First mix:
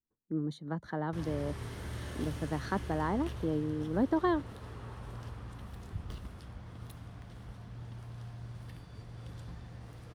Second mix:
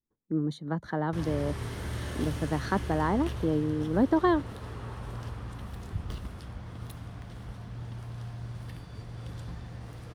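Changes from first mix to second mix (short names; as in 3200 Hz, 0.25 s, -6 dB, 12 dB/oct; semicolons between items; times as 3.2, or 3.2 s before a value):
speech +5.0 dB; background +5.5 dB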